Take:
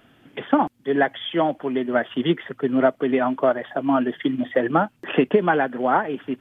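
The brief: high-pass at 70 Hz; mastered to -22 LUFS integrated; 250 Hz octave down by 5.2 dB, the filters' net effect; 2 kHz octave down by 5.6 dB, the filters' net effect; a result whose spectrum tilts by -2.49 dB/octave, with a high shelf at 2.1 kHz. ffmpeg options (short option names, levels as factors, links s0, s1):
-af "highpass=70,equalizer=f=250:t=o:g=-6,equalizer=f=2000:t=o:g=-3.5,highshelf=f=2100:g=-8,volume=1.41"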